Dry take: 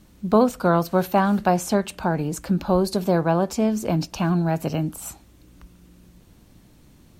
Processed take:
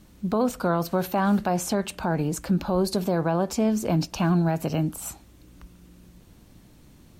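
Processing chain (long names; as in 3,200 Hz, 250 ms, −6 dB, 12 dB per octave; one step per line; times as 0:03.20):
brickwall limiter −14.5 dBFS, peak gain reduction 9 dB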